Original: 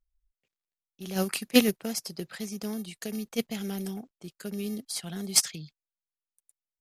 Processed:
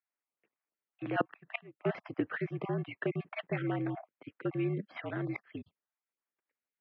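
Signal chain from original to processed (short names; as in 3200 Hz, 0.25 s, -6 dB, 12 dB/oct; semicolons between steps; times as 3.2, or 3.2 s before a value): random spectral dropouts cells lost 25%; flipped gate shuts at -18 dBFS, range -30 dB; mistuned SSB -60 Hz 270–2400 Hz; gain +7 dB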